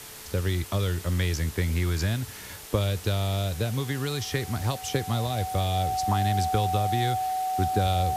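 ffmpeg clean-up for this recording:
-af "bandreject=f=435.7:t=h:w=4,bandreject=f=871.4:t=h:w=4,bandreject=f=1.3071k:t=h:w=4,bandreject=f=1.7428k:t=h:w=4,bandreject=f=750:w=30,afwtdn=0.0079"

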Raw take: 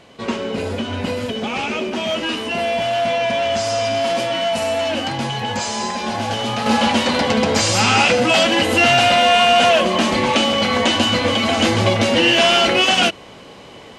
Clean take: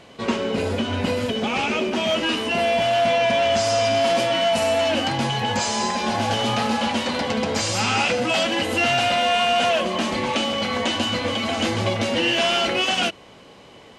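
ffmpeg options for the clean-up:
-af "asetnsamples=n=441:p=0,asendcmd='6.66 volume volume -6.5dB',volume=0dB"

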